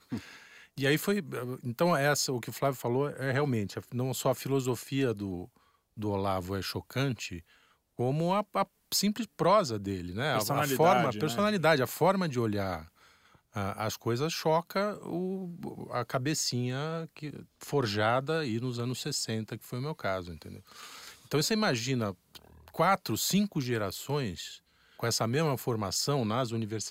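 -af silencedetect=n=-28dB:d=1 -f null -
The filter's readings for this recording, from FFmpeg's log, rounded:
silence_start: 20.19
silence_end: 21.32 | silence_duration: 1.13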